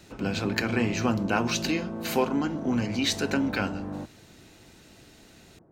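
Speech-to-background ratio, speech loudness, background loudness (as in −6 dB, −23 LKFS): 7.5 dB, −28.0 LKFS, −35.5 LKFS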